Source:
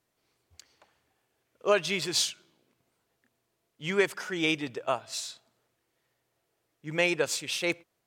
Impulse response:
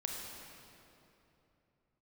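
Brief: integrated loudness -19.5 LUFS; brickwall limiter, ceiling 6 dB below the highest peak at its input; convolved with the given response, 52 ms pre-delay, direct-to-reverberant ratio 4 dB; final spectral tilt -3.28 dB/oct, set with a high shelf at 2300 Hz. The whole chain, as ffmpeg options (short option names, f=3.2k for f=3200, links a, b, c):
-filter_complex "[0:a]highshelf=f=2.3k:g=-4,alimiter=limit=-18.5dB:level=0:latency=1,asplit=2[a][b];[1:a]atrim=start_sample=2205,adelay=52[c];[b][c]afir=irnorm=-1:irlink=0,volume=-5.5dB[d];[a][d]amix=inputs=2:normalize=0,volume=12dB"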